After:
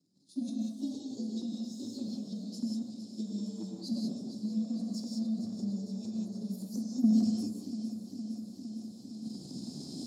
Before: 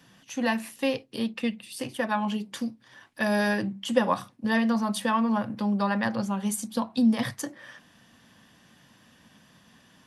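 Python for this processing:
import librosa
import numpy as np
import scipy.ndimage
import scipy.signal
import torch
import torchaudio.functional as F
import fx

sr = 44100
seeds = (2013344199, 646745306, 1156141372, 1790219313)

p1 = fx.partial_stretch(x, sr, pct=114)
p2 = fx.recorder_agc(p1, sr, target_db=-19.0, rise_db_per_s=11.0, max_gain_db=30)
p3 = scipy.signal.sosfilt(scipy.signal.cheby2(4, 60, [790.0, 2200.0], 'bandstop', fs=sr, output='sos'), p2)
p4 = fx.high_shelf(p3, sr, hz=5100.0, db=-11.5)
p5 = fx.level_steps(p4, sr, step_db=20)
p6 = p4 + (p5 * 10.0 ** (2.0 / 20.0))
p7 = fx.transient(p6, sr, attack_db=6, sustain_db=10)
p8 = fx.bandpass_edges(p7, sr, low_hz=290.0, high_hz=6500.0)
p9 = p8 + fx.echo_alternate(p8, sr, ms=230, hz=1700.0, feedback_pct=89, wet_db=-9.5, dry=0)
p10 = fx.rev_gated(p9, sr, seeds[0], gate_ms=210, shape='rising', drr_db=-0.5)
y = p10 * 10.0 ** (-8.5 / 20.0)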